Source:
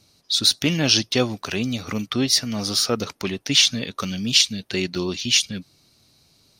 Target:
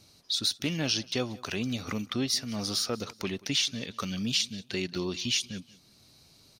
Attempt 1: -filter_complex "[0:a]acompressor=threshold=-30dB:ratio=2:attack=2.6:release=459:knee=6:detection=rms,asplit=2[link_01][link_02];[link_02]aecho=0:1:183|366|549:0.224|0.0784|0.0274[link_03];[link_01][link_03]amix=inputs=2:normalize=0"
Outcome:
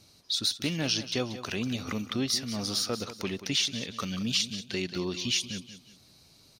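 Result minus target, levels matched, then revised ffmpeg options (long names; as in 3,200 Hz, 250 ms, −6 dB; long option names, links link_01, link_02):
echo-to-direct +9.5 dB
-filter_complex "[0:a]acompressor=threshold=-30dB:ratio=2:attack=2.6:release=459:knee=6:detection=rms,asplit=2[link_01][link_02];[link_02]aecho=0:1:183|366:0.075|0.0262[link_03];[link_01][link_03]amix=inputs=2:normalize=0"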